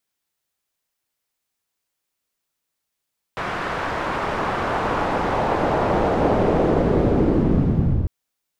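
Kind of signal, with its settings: swept filtered noise white, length 4.70 s lowpass, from 1400 Hz, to 100 Hz, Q 1.2, linear, gain ramp +19 dB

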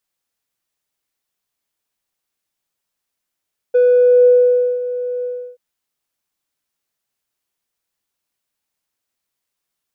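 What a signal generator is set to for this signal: synth note square B4 12 dB/oct, low-pass 550 Hz, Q 5.2, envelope 0.5 oct, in 0.51 s, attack 13 ms, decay 1.04 s, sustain -18 dB, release 0.33 s, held 1.50 s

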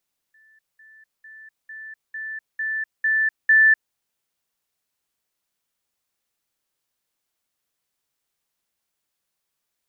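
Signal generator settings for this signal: level ladder 1760 Hz -53 dBFS, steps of 6 dB, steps 8, 0.25 s 0.20 s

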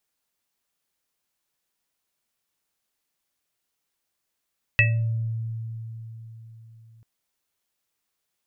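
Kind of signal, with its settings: sine partials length 2.24 s, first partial 113 Hz, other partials 585/1920/2620 Hz, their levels -16/2.5/5.5 dB, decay 4.23 s, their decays 0.94/0.24/0.26 s, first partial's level -18 dB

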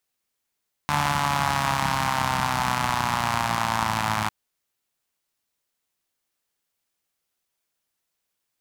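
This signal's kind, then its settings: four-cylinder engine model, changing speed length 3.40 s, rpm 4400, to 3200, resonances 94/160/900 Hz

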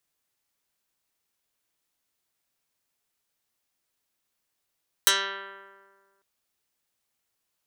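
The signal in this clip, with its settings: plucked string G3, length 1.15 s, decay 1.72 s, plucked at 0.08, dark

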